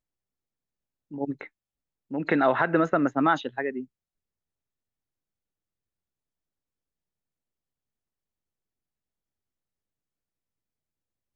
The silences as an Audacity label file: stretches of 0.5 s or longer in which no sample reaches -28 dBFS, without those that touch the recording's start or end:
1.410000	2.130000	silence